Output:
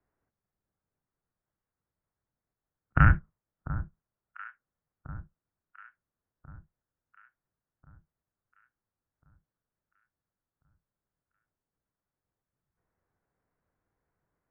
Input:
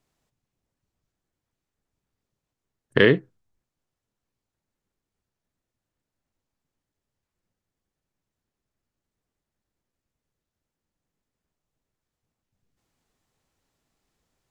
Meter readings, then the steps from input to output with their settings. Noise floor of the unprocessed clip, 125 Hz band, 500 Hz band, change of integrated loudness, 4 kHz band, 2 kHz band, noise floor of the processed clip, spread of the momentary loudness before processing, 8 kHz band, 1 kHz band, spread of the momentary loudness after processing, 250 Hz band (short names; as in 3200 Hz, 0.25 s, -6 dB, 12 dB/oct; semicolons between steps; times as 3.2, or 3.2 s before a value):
under -85 dBFS, +5.0 dB, -25.5 dB, -6.0 dB, under -25 dB, -5.5 dB, under -85 dBFS, 9 LU, n/a, +8.0 dB, 23 LU, -7.5 dB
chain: mistuned SSB -340 Hz 200–2200 Hz; echo with dull and thin repeats by turns 0.695 s, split 1200 Hz, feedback 63%, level -13 dB; gain -2 dB